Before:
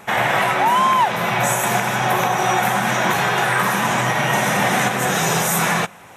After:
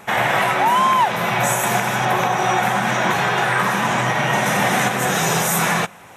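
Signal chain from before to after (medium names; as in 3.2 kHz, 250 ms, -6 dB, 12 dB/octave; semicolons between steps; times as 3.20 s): 2.05–4.46 s: treble shelf 9.5 kHz -10 dB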